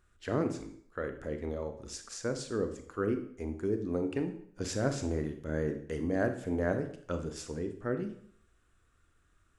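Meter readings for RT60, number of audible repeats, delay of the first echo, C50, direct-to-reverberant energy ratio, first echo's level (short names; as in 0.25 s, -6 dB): 0.60 s, none, none, 10.0 dB, 7.0 dB, none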